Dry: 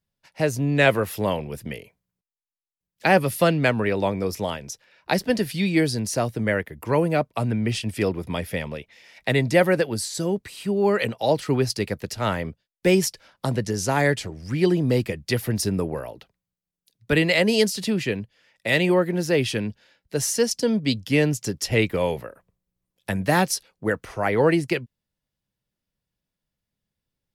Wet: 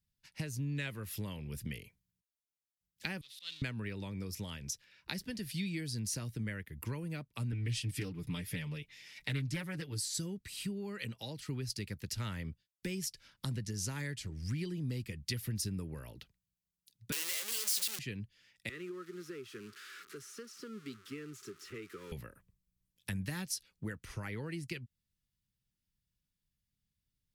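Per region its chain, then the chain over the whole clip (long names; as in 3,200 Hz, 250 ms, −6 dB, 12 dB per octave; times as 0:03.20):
0:03.21–0:03.62: converter with a step at zero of −20.5 dBFS + resonant band-pass 3,700 Hz, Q 6.6 + volume swells 105 ms
0:07.52–0:10.02: comb filter 6.8 ms, depth 78% + highs frequency-modulated by the lows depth 0.28 ms
0:17.12–0:17.99: sign of each sample alone + high-pass filter 380 Hz 24 dB per octave + high-shelf EQ 4,500 Hz +9 dB
0:18.69–0:22.12: spike at every zero crossing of −14.5 dBFS + pair of resonant band-passes 710 Hz, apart 1.7 octaves + multiband upward and downward compressor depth 40%
whole clip: notch filter 710 Hz, Q 15; downward compressor 4 to 1, threshold −31 dBFS; guitar amp tone stack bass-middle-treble 6-0-2; level +12.5 dB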